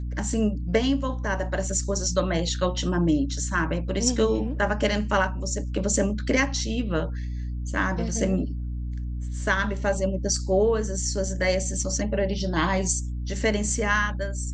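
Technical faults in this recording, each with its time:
mains hum 60 Hz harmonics 5 −30 dBFS

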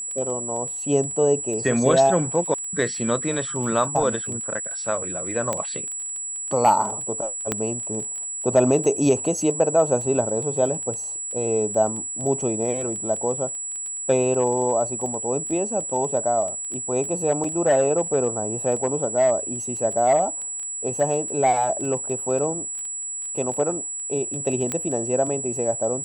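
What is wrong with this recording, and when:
surface crackle 11 per second −30 dBFS
whistle 7,800 Hz −28 dBFS
0:05.53: click −11 dBFS
0:07.52: click −8 dBFS
0:17.44: drop-out 4.2 ms
0:24.72: click −11 dBFS

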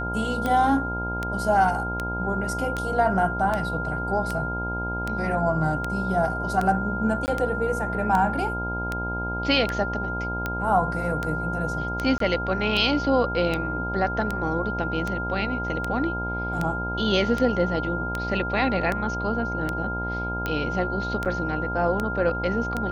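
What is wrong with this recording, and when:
mains buzz 60 Hz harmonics 17 −31 dBFS
scratch tick 78 rpm −13 dBFS
whistle 1,400 Hz −29 dBFS
0:07.26–0:07.28: drop-out 19 ms
0:12.18–0:12.20: drop-out 23 ms
0:21.25–0:21.26: drop-out 7.7 ms

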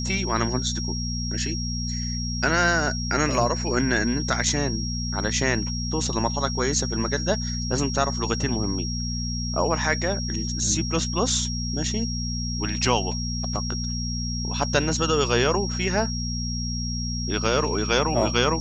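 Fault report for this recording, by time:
mains hum 60 Hz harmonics 4 −29 dBFS
whistle 5,600 Hz −31 dBFS

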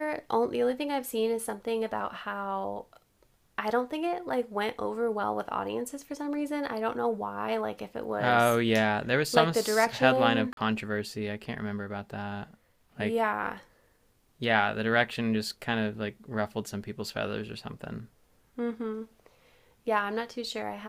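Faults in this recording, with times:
0:10.53–0:10.57: drop-out 42 ms

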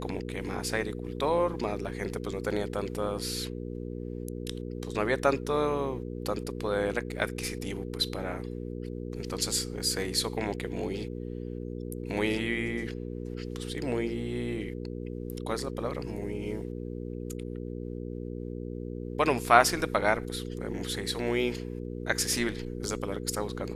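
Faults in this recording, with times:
mains hum 60 Hz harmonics 8 −37 dBFS

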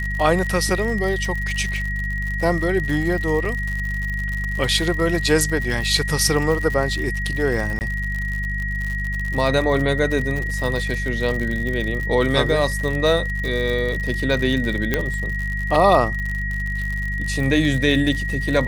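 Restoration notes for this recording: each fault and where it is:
surface crackle 75 per second −25 dBFS
mains hum 50 Hz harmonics 4 −26 dBFS
whistle 1,900 Hz −26 dBFS
0:03.45: drop-out 3.6 ms
0:07.79–0:07.81: drop-out 19 ms
0:14.94: click −5 dBFS

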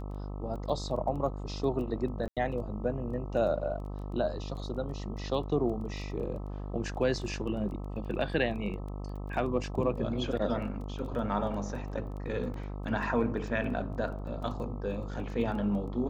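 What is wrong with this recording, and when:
mains buzz 50 Hz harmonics 26 −38 dBFS
surface crackle 10 per second −40 dBFS
0:02.28–0:02.37: drop-out 87 ms
0:12.54: drop-out 2.3 ms

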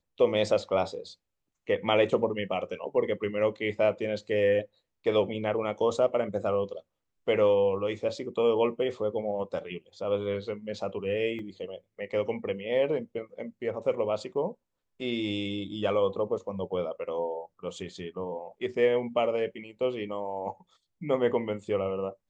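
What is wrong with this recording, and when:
0:11.39: drop-out 2.7 ms

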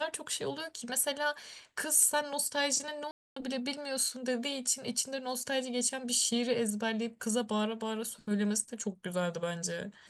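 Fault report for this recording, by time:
0:03.11–0:03.36: drop-out 254 ms

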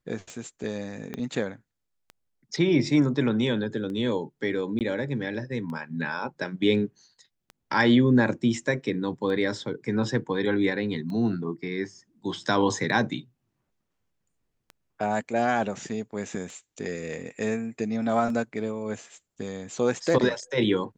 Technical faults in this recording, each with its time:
scratch tick 33 1/3 rpm −27 dBFS
0:01.14: click −19 dBFS
0:04.79–0:04.81: drop-out 18 ms

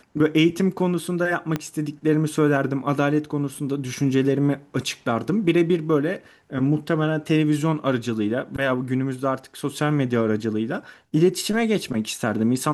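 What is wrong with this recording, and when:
0:01.56: click −11 dBFS

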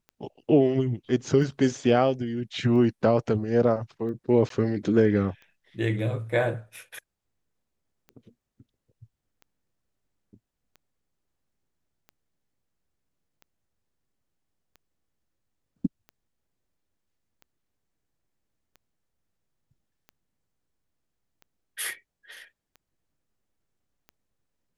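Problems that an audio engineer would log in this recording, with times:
scratch tick 45 rpm −33 dBFS
0:04.49–0:04.50: drop-out 13 ms

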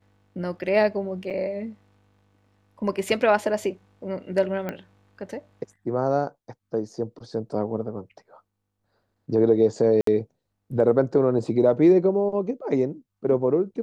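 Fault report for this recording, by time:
0:01.30–0:01.31: drop-out 6.5 ms
0:04.69: click −18 dBFS
0:10.01–0:10.07: drop-out 63 ms

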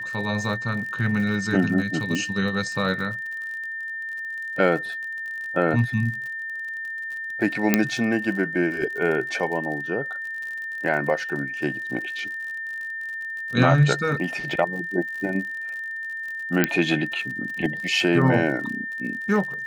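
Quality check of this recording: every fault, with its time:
surface crackle 51 per second −32 dBFS
whistle 1,800 Hz −29 dBFS
0:02.15: click −14 dBFS
0:07.74: click −2 dBFS
0:16.64: click −3 dBFS

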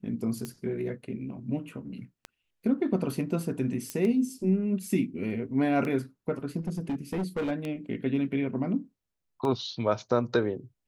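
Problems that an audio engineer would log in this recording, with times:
scratch tick 33 1/3 rpm −21 dBFS
0:03.90: click −17 dBFS
0:06.58–0:07.52: clipping −26.5 dBFS

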